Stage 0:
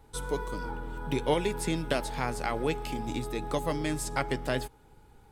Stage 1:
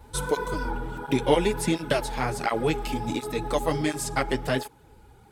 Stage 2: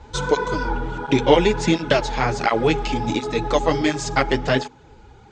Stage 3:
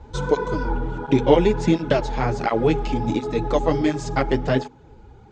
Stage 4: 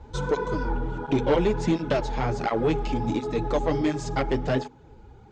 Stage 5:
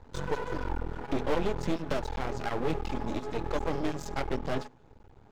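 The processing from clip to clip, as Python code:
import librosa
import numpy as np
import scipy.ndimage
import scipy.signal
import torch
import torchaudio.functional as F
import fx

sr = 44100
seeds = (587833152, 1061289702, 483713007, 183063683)

y1 = fx.rider(x, sr, range_db=10, speed_s=2.0)
y1 = fx.flanger_cancel(y1, sr, hz=1.4, depth_ms=7.7)
y1 = y1 * librosa.db_to_amplitude(7.5)
y2 = scipy.signal.sosfilt(scipy.signal.ellip(4, 1.0, 50, 6900.0, 'lowpass', fs=sr, output='sos'), y1)
y2 = fx.hum_notches(y2, sr, base_hz=50, count=5)
y2 = y2 * librosa.db_to_amplitude(7.5)
y3 = fx.tilt_shelf(y2, sr, db=5.0, hz=970.0)
y3 = y3 * librosa.db_to_amplitude(-3.5)
y4 = 10.0 ** (-12.5 / 20.0) * np.tanh(y3 / 10.0 ** (-12.5 / 20.0))
y4 = y4 * librosa.db_to_amplitude(-2.5)
y5 = fx.hum_notches(y4, sr, base_hz=60, count=2)
y5 = np.maximum(y5, 0.0)
y5 = y5 * librosa.db_to_amplitude(-2.5)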